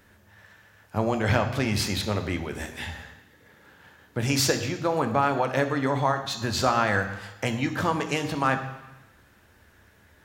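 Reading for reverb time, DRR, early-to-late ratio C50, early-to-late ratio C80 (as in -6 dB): 1.0 s, 6.0 dB, 10.0 dB, 12.0 dB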